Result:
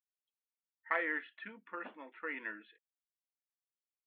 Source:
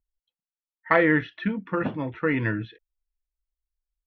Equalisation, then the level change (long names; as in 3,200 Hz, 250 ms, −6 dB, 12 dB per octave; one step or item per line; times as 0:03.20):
Gaussian smoothing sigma 3.5 samples
linear-phase brick-wall high-pass 190 Hz
first difference
+4.0 dB